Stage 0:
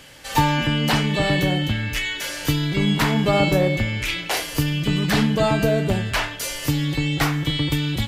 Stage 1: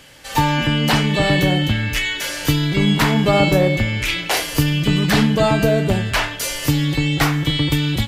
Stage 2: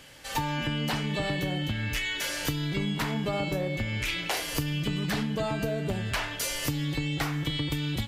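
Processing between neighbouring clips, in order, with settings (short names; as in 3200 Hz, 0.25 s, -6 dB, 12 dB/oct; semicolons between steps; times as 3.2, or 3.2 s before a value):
AGC gain up to 5.5 dB
compressor, threshold -21 dBFS, peak gain reduction 10.5 dB; gain -5.5 dB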